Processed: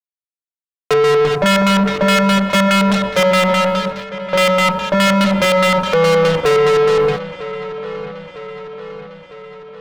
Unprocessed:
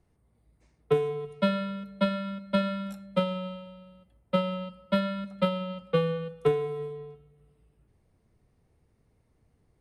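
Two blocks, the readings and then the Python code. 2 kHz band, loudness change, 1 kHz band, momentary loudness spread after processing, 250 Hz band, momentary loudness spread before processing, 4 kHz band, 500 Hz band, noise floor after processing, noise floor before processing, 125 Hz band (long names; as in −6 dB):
+23.5 dB, +16.0 dB, +19.5 dB, 17 LU, +14.5 dB, 10 LU, +20.5 dB, +16.0 dB, below −85 dBFS, −69 dBFS, +13.0 dB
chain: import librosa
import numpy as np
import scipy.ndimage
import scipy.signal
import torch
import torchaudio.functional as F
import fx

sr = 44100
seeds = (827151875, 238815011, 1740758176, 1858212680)

p1 = fx.low_shelf(x, sr, hz=270.0, db=-10.5)
p2 = fx.rev_spring(p1, sr, rt60_s=3.6, pass_ms=(31,), chirp_ms=35, drr_db=18.0)
p3 = fx.over_compress(p2, sr, threshold_db=-34.0, ratio=-1.0)
p4 = p2 + (p3 * 10.0 ** (-1.0 / 20.0))
p5 = fx.fuzz(p4, sr, gain_db=41.0, gate_db=-46.0)
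p6 = fx.filter_lfo_lowpass(p5, sr, shape='square', hz=4.8, low_hz=930.0, high_hz=4100.0, q=1.0)
p7 = fx.leveller(p6, sr, passes=2)
y = fx.echo_wet_lowpass(p7, sr, ms=953, feedback_pct=57, hz=3400.0, wet_db=-14.0)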